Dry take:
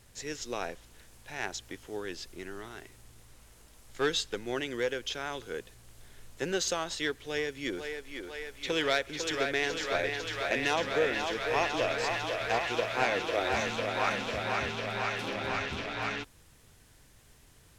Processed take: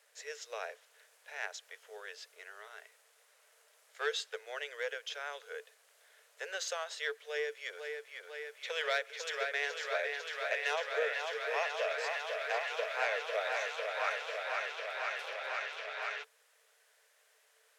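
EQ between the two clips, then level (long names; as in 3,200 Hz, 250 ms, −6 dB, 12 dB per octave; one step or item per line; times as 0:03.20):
Chebyshev high-pass with heavy ripple 430 Hz, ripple 6 dB
−2.0 dB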